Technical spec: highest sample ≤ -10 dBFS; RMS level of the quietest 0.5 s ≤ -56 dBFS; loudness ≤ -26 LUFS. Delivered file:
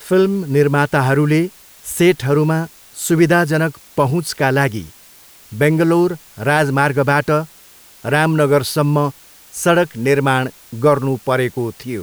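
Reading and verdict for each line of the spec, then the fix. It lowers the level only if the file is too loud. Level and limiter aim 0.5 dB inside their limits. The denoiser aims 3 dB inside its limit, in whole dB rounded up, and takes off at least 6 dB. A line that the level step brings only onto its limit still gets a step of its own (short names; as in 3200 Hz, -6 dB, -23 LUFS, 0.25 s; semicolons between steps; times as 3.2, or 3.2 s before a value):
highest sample -1.5 dBFS: fail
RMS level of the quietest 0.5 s -44 dBFS: fail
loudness -16.5 LUFS: fail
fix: denoiser 6 dB, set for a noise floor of -44 dBFS; gain -10 dB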